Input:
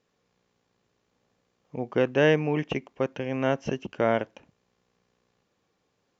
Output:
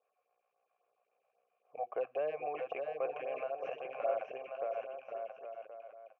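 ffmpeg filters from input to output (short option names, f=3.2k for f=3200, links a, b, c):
-filter_complex "[0:a]asplit=2[a][b];[b]highpass=f=720:p=1,volume=13dB,asoftclip=type=tanh:threshold=-8.5dB[c];[a][c]amix=inputs=2:normalize=0,lowpass=f=3.3k:p=1,volume=-6dB,asplit=3[d][e][f];[d]bandpass=f=730:t=q:w=8,volume=0dB[g];[e]bandpass=f=1.09k:t=q:w=8,volume=-6dB[h];[f]bandpass=f=2.44k:t=q:w=8,volume=-9dB[i];[g][h][i]amix=inputs=3:normalize=0,asettb=1/sr,asplit=3[j][k][l];[j]atrim=end=1.834[m];[k]atrim=start=1.83:end=2.55,asetpts=PTS-STARTPTS,afade=t=in:d=0.004:c=qsin,afade=t=out:st=0.716:d=0.004:c=qsin,acrossover=split=300[n][o];[o]acompressor=threshold=-35dB:ratio=6[p];[n][p]amix=inputs=2:normalize=0[q];[l]atrim=start=2.546[r];[m][q]acrossfade=d=0.004:c1=hsin:c2=qsin[s];[s][r]acrossfade=d=0.004:c1=qsin:c2=hsin,alimiter=level_in=3dB:limit=-24dB:level=0:latency=1:release=18,volume=-3dB,aecho=1:1:620|1085|1434|1695|1891:0.631|0.398|0.251|0.158|0.1,asettb=1/sr,asplit=3[t][u][v];[t]atrim=end=3.254[w];[u]atrim=start=3.25:end=3.66,asetpts=PTS-STARTPTS,afade=t=in:d=0.004:c=qsin,afade=t=out:st=0.406:d=0.004:c=qsin,acompressor=threshold=-37dB:ratio=2[x];[v]atrim=start=3.656[y];[w][x]acrossfade=d=0.004:c1=hsin:c2=qsin[z];[z][y]acrossfade=d=0.004:c1=qsin:c2=hsin,equalizer=f=250:t=o:w=1:g=-9,equalizer=f=500:t=o:w=1:g=9,equalizer=f=1k:t=o:w=1:g=-4,equalizer=f=2k:t=o:w=1:g=7,equalizer=f=4k:t=o:w=1:g=-11,afftfilt=real='re*(1-between(b*sr/1024,280*pow(5400/280,0.5+0.5*sin(2*PI*3.7*pts/sr))/1.41,280*pow(5400/280,0.5+0.5*sin(2*PI*3.7*pts/sr))*1.41))':imag='im*(1-between(b*sr/1024,280*pow(5400/280,0.5+0.5*sin(2*PI*3.7*pts/sr))/1.41,280*pow(5400/280,0.5+0.5*sin(2*PI*3.7*pts/sr))*1.41))':win_size=1024:overlap=0.75,volume=-2.5dB"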